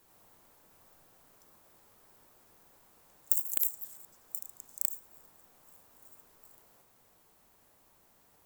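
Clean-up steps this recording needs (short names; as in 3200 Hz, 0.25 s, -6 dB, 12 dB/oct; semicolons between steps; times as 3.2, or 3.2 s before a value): clip repair -9.5 dBFS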